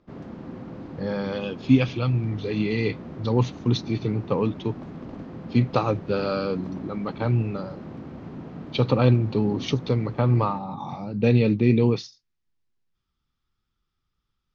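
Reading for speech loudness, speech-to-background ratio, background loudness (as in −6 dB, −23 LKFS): −24.5 LKFS, 14.5 dB, −39.0 LKFS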